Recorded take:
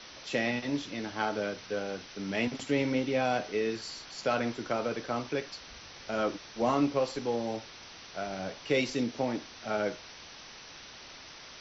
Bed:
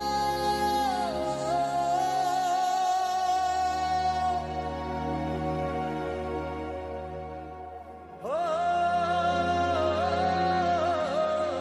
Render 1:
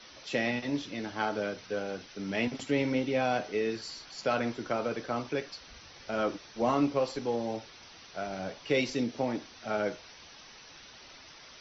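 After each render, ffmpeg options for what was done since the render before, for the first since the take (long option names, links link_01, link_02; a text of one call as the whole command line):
ffmpeg -i in.wav -af "afftdn=noise_reduction=6:noise_floor=-49" out.wav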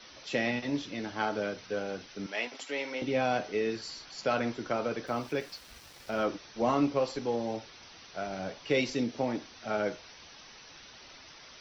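ffmpeg -i in.wav -filter_complex "[0:a]asettb=1/sr,asplit=3[link_01][link_02][link_03];[link_01]atrim=end=2.264[link_04];[link_02]atrim=start=2.26:end=3.02,asetpts=PTS-STARTPTS,afade=type=in:duration=0.004:curve=qsin,afade=type=out:start_time=0.756:duration=0.004:curve=qsin,highpass=600[link_05];[link_03]atrim=start=3.016[link_06];[link_04][link_05]acrossfade=duration=0.004:curve1=hsin:curve2=qsin[link_07];[link_07][link_06]acrossfade=duration=0.004:curve1=qsin:curve2=hsin,asplit=3[link_08][link_09][link_10];[link_08]afade=type=out:start_time=5.06:duration=0.02[link_11];[link_09]aeval=exprs='val(0)*gte(abs(val(0)),0.00299)':channel_layout=same,afade=type=in:start_time=5.06:duration=0.02,afade=type=out:start_time=6.25:duration=0.02[link_12];[link_10]afade=type=in:start_time=6.25:duration=0.02[link_13];[link_11][link_12][link_13]amix=inputs=3:normalize=0" out.wav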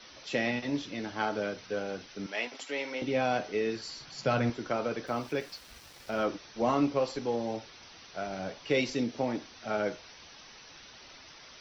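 ffmpeg -i in.wav -filter_complex "[0:a]asettb=1/sr,asplit=3[link_01][link_02][link_03];[link_01]atrim=end=4.004[link_04];[link_02]atrim=start=4:end=4.5,asetpts=PTS-STARTPTS,afade=type=in:duration=0.004:curve=qsin,afade=type=out:start_time=0.496:duration=0.004:curve=qsin,equalizer=frequency=130:width=1.5:gain=12.5[link_05];[link_03]atrim=start=4.496[link_06];[link_04][link_05]acrossfade=duration=0.004:curve1=hsin:curve2=qsin[link_07];[link_07][link_06]acrossfade=duration=0.004:curve1=qsin:curve2=hsin" out.wav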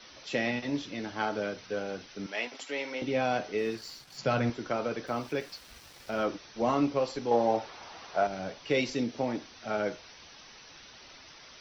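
ffmpeg -i in.wav -filter_complex "[0:a]asplit=3[link_01][link_02][link_03];[link_01]afade=type=out:start_time=3.57:duration=0.02[link_04];[link_02]aeval=exprs='sgn(val(0))*max(abs(val(0))-0.00251,0)':channel_layout=same,afade=type=in:start_time=3.57:duration=0.02,afade=type=out:start_time=4.17:duration=0.02[link_05];[link_03]afade=type=in:start_time=4.17:duration=0.02[link_06];[link_04][link_05][link_06]amix=inputs=3:normalize=0,asettb=1/sr,asplit=3[link_07][link_08][link_09];[link_07]atrim=end=7.314[link_10];[link_08]atrim=start=7.31:end=8.27,asetpts=PTS-STARTPTS,afade=type=in:duration=0.004:curve=qsin,afade=type=out:start_time=0.956:duration=0.004:curve=qsin,equalizer=frequency=810:width_type=o:width=1.9:gain=12[link_11];[link_09]atrim=start=8.266[link_12];[link_10][link_11]acrossfade=duration=0.004:curve1=hsin:curve2=qsin[link_13];[link_13][link_12]acrossfade=duration=0.004:curve1=qsin:curve2=hsin" out.wav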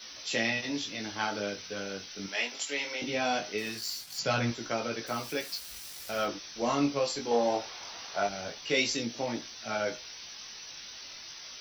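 ffmpeg -i in.wav -af "flanger=delay=17.5:depth=3.7:speed=0.21,crystalizer=i=5:c=0" out.wav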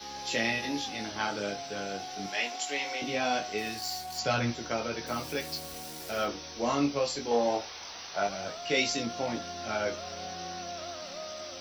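ffmpeg -i in.wav -i bed.wav -filter_complex "[1:a]volume=-15dB[link_01];[0:a][link_01]amix=inputs=2:normalize=0" out.wav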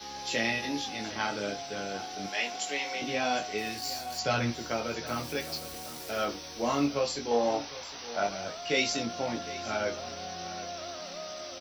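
ffmpeg -i in.wav -af "aecho=1:1:759:0.158" out.wav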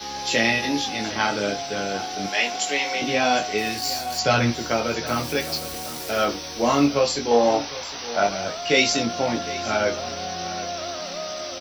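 ffmpeg -i in.wav -af "volume=9dB" out.wav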